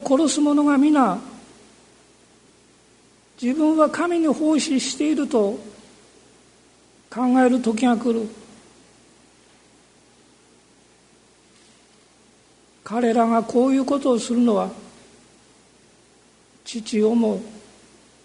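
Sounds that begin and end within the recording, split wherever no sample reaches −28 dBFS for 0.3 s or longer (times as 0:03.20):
0:03.42–0:05.59
0:07.12–0:08.28
0:12.86–0:14.71
0:16.68–0:17.41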